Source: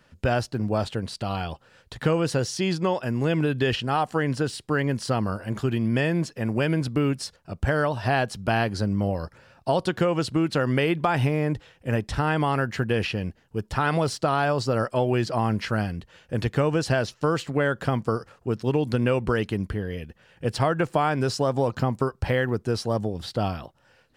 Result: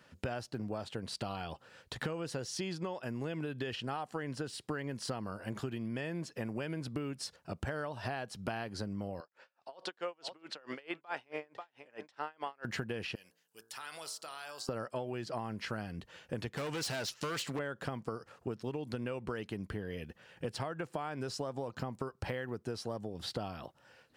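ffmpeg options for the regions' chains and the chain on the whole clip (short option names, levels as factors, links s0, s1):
-filter_complex "[0:a]asettb=1/sr,asplit=3[s0][s1][s2];[s0]atrim=end=9.204[s3];[s1]atrim=start=9.2:end=12.65,asetpts=PTS-STARTPTS,afade=t=in:d=0.004:c=qsin,afade=t=out:st=3.446:d=0.004:c=qsin,highpass=500,lowpass=5700,aecho=1:1:540:0.119,atrim=end_sample=152145,aeval=exprs='val(0)*pow(10,-34*(0.5-0.5*cos(2*PI*4.6*n/s))/20)':c=same[s4];[s2]atrim=start=12.646[s5];[s3][s4]acrossfade=d=0.004:c1=hsin:c2=qsin[s6];[s6][s5]acrossfade=d=0.004:c1=qsin:c2=hsin,asettb=1/sr,asplit=3[s7][s8][s9];[s7]atrim=end=13.154[s10];[s8]atrim=start=13.15:end=14.69,asetpts=PTS-STARTPTS,afade=t=in:d=0.004:c=qsin,afade=t=out:st=1.536:d=0.004:c=qsin,aderivative,acompressor=threshold=0.0126:ratio=4:attack=3.2:release=140:knee=1:detection=peak,bandreject=f=56.48:t=h:w=4,bandreject=f=112.96:t=h:w=4,bandreject=f=169.44:t=h:w=4,bandreject=f=225.92:t=h:w=4,bandreject=f=282.4:t=h:w=4,bandreject=f=338.88:t=h:w=4,bandreject=f=395.36:t=h:w=4,bandreject=f=451.84:t=h:w=4,bandreject=f=508.32:t=h:w=4,bandreject=f=564.8:t=h:w=4,bandreject=f=621.28:t=h:w=4,bandreject=f=677.76:t=h:w=4,bandreject=f=734.24:t=h:w=4,bandreject=f=790.72:t=h:w=4,bandreject=f=847.2:t=h:w=4,bandreject=f=903.68:t=h:w=4,bandreject=f=960.16:t=h:w=4,bandreject=f=1016.64:t=h:w=4,bandreject=f=1073.12:t=h:w=4,bandreject=f=1129.6:t=h:w=4,bandreject=f=1186.08:t=h:w=4,bandreject=f=1242.56:t=h:w=4,bandreject=f=1299.04:t=h:w=4,bandreject=f=1355.52:t=h:w=4,bandreject=f=1412:t=h:w=4,bandreject=f=1468.48:t=h:w=4,bandreject=f=1524.96:t=h:w=4,bandreject=f=1581.44:t=h:w=4,bandreject=f=1637.92:t=h:w=4,bandreject=f=1694.4:t=h:w=4[s11];[s9]atrim=start=14.686[s12];[s10][s11]acrossfade=d=0.004:c1=hsin:c2=qsin[s13];[s13][s12]acrossfade=d=0.004:c1=qsin:c2=hsin,asettb=1/sr,asplit=3[s14][s15][s16];[s14]atrim=end=16.574[s17];[s15]atrim=start=16.57:end=17.59,asetpts=PTS-STARTPTS,afade=t=in:d=0.004:c=qsin,afade=t=out:st=1.016:d=0.004:c=qsin,tiltshelf=f=1400:g=-5.5,acontrast=57,volume=13.3,asoftclip=hard,volume=0.075[s18];[s16]atrim=start=17.586[s19];[s17][s18]acrossfade=d=0.004:c1=hsin:c2=qsin[s20];[s20][s19]acrossfade=d=0.004:c1=qsin:c2=hsin,highpass=f=150:p=1,acompressor=threshold=0.0224:ratio=12,volume=0.841"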